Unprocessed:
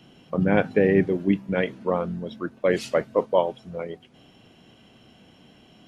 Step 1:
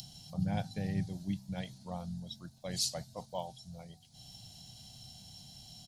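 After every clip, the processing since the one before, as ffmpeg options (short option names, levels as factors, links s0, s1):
-af "acompressor=mode=upward:threshold=0.0158:ratio=2.5,firequalizer=gain_entry='entry(130,0);entry(260,-19);entry(410,-28);entry(750,-7);entry(1100,-21);entry(2700,-15);entry(4100,10)':delay=0.05:min_phase=1,volume=0.708"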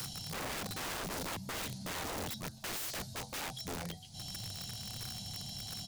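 -af "acompressor=threshold=0.0141:ratio=4,flanger=delay=9.3:depth=1.7:regen=71:speed=0.39:shape=triangular,aeval=exprs='(mod(251*val(0)+1,2)-1)/251':c=same,volume=4.73"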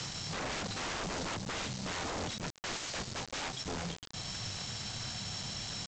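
-af "alimiter=level_in=5.96:limit=0.0631:level=0:latency=1:release=273,volume=0.168,aresample=16000,acrusher=bits=7:mix=0:aa=0.000001,aresample=44100,volume=2.24"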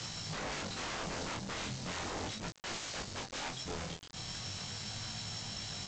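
-af "flanger=delay=18:depth=7.7:speed=0.38,volume=1.12"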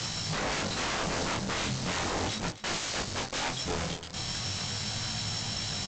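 -filter_complex "[0:a]asplit=2[s0][s1];[s1]adelay=262.4,volume=0.2,highshelf=f=4000:g=-5.9[s2];[s0][s2]amix=inputs=2:normalize=0,volume=2.51"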